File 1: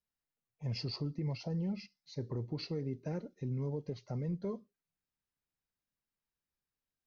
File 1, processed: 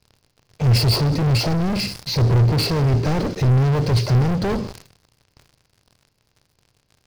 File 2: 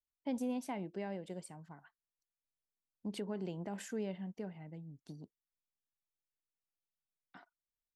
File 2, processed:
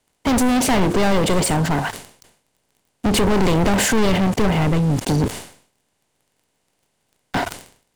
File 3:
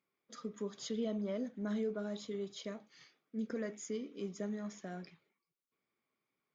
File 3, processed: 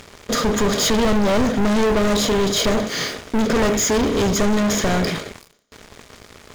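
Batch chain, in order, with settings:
per-bin compression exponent 0.6; sample leveller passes 5; resonant low shelf 140 Hz +7.5 dB, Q 1.5; sustainer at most 110 dB/s; match loudness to -19 LUFS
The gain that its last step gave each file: +7.0, +13.0, +11.0 dB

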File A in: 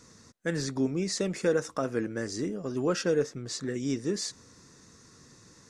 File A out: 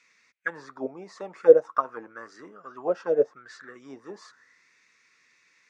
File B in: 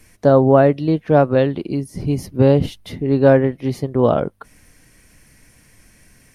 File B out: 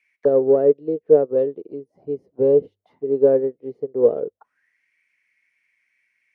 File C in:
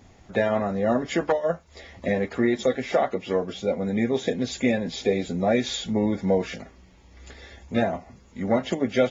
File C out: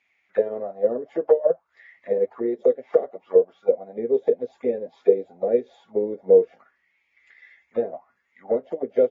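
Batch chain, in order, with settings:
in parallel at -9 dB: hard clip -13 dBFS; on the sum: notches 50/100 Hz; dynamic EQ 800 Hz, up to -4 dB, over -27 dBFS, Q 0.79; auto-wah 450–2400 Hz, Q 7.9, down, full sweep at -18.5 dBFS; upward expander 1.5:1, over -48 dBFS; normalise peaks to -3 dBFS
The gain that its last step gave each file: +20.0, +9.0, +13.0 dB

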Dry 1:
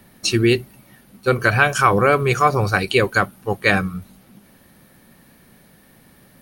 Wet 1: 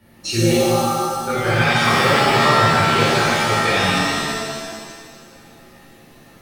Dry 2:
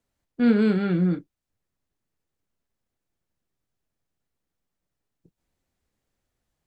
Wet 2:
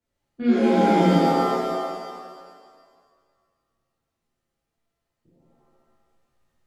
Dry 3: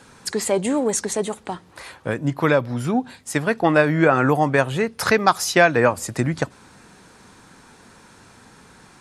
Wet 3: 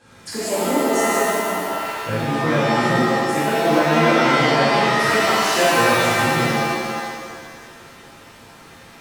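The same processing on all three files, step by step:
high shelf 8000 Hz -7.5 dB; compressor 2:1, threshold -20 dBFS; shimmer reverb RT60 1.8 s, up +7 st, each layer -2 dB, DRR -10.5 dB; gain -8.5 dB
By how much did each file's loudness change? +1.5, +2.0, +2.5 LU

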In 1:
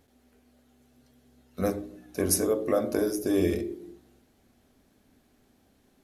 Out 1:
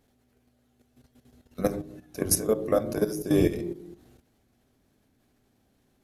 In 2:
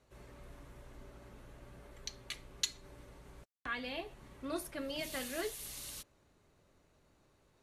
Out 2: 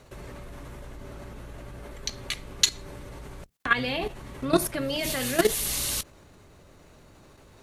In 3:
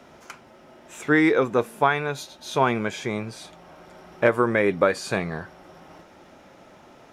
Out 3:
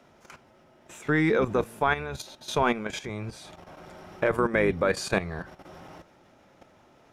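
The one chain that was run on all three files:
octaver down 1 oct, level -5 dB; level quantiser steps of 12 dB; match loudness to -27 LUFS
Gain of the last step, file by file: +4.0, +19.0, +2.0 dB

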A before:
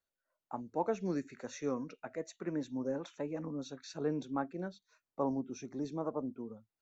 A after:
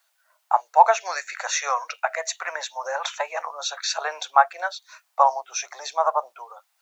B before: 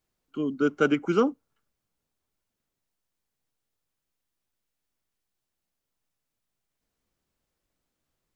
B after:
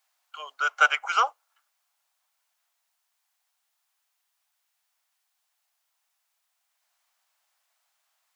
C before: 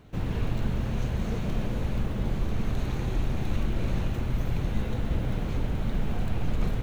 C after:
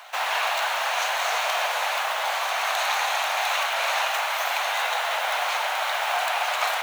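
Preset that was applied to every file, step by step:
steep high-pass 680 Hz 48 dB/oct; match loudness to -24 LUFS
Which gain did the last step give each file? +23.5, +9.5, +19.5 dB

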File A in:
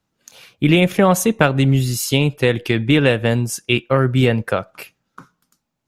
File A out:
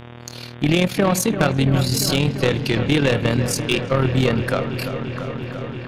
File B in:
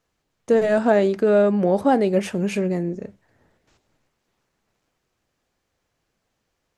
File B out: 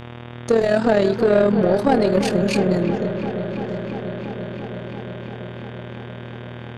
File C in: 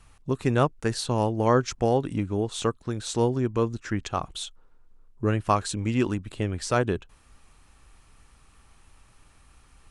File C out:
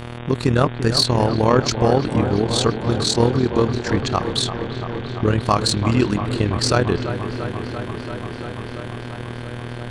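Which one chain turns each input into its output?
bell 4400 Hz +12 dB 0.34 oct; in parallel at -2.5 dB: compressor, threshold -24 dBFS; on the sum: buzz 120 Hz, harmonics 31, -36 dBFS -5 dB/oct; AM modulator 39 Hz, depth 55%; soft clip -11 dBFS; on a send: dark delay 0.341 s, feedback 82%, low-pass 2400 Hz, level -10 dB; on the sum: match loudness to -20 LUFS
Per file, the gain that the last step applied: +0.5, +3.0, +6.5 dB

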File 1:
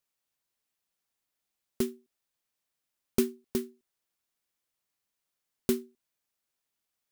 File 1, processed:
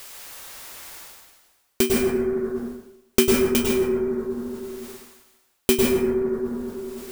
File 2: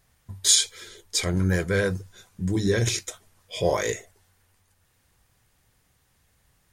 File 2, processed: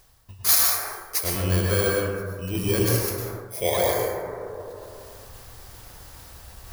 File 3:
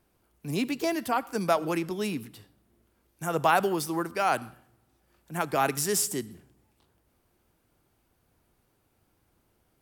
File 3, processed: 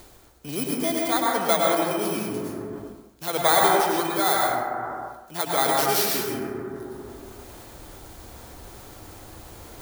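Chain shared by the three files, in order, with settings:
FFT order left unsorted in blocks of 16 samples; bell 160 Hz -10 dB 1.5 oct; plate-style reverb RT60 1.6 s, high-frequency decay 0.3×, pre-delay 90 ms, DRR -2.5 dB; reverse; upward compressor, threshold -26 dBFS; reverse; match loudness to -23 LUFS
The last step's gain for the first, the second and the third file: +11.0, 0.0, +2.5 dB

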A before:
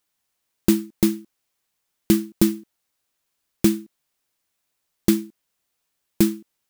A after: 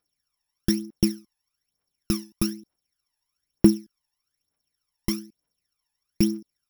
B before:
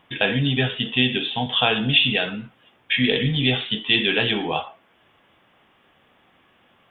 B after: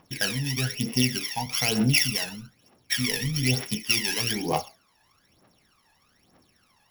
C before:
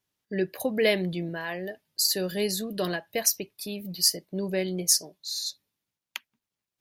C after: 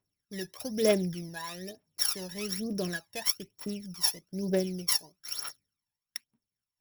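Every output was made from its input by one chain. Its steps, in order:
sample sorter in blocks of 8 samples; phaser 1.1 Hz, delay 1.2 ms, feedback 74%; gain -8.5 dB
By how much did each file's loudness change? -3.5, -4.5, -4.0 LU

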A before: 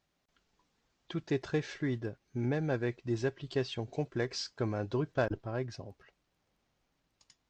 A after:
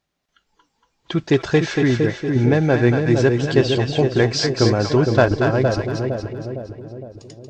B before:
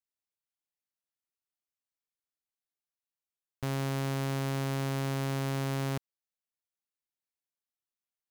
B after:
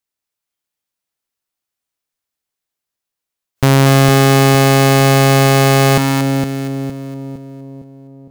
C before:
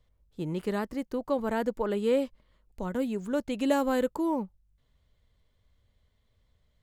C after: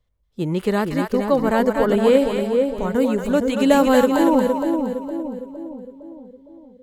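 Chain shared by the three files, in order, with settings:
spectral noise reduction 13 dB; split-band echo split 640 Hz, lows 0.46 s, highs 0.233 s, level -4 dB; normalise peaks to -1.5 dBFS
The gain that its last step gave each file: +15.5, +22.5, +10.5 dB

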